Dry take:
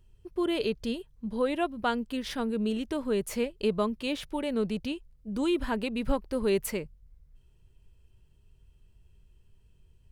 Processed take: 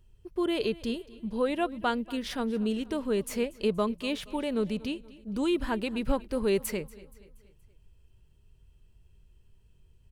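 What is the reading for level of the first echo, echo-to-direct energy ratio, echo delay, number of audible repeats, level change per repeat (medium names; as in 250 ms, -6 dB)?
-20.0 dB, -19.0 dB, 237 ms, 3, -6.5 dB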